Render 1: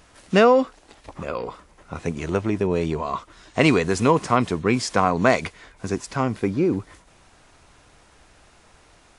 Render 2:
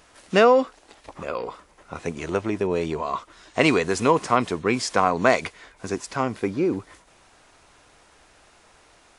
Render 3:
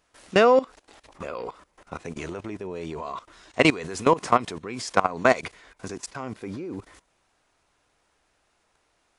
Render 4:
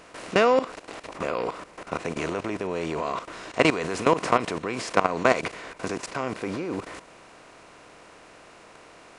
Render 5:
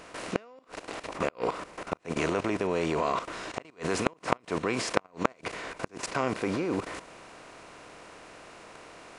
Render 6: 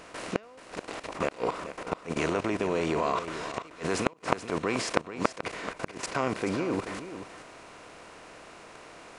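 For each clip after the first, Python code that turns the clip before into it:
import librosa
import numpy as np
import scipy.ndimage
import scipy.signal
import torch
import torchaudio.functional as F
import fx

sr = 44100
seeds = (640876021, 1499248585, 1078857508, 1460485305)

y1 = fx.bass_treble(x, sr, bass_db=-7, treble_db=0)
y2 = fx.level_steps(y1, sr, step_db=18)
y2 = y2 * librosa.db_to_amplitude(2.5)
y3 = fx.bin_compress(y2, sr, power=0.6)
y3 = y3 * librosa.db_to_amplitude(-4.0)
y4 = fx.gate_flip(y3, sr, shuts_db=-13.0, range_db=-33)
y4 = y4 * librosa.db_to_amplitude(1.0)
y5 = y4 + 10.0 ** (-11.5 / 20.0) * np.pad(y4, (int(432 * sr / 1000.0), 0))[:len(y4)]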